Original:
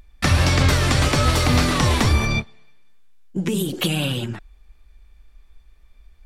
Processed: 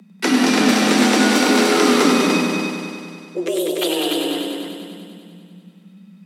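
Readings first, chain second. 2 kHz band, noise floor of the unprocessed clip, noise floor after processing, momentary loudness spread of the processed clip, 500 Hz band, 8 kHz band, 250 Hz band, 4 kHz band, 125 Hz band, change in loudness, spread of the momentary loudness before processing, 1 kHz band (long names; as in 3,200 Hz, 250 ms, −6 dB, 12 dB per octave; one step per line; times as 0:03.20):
+4.0 dB, −52 dBFS, −47 dBFS, 16 LU, +8.0 dB, +4.0 dB, +8.0 dB, +3.5 dB, −13.5 dB, +3.0 dB, 10 LU, +4.0 dB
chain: frequency shifter +170 Hz
echo machine with several playback heads 98 ms, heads all three, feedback 54%, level −7 dB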